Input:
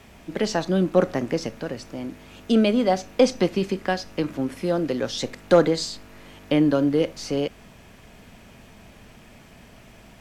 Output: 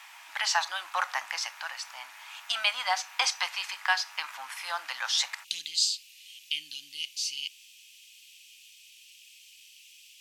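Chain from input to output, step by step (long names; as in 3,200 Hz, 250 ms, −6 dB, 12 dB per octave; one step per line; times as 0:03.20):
elliptic high-pass filter 870 Hz, stop band 50 dB, from 0:05.43 2,700 Hz
level +5 dB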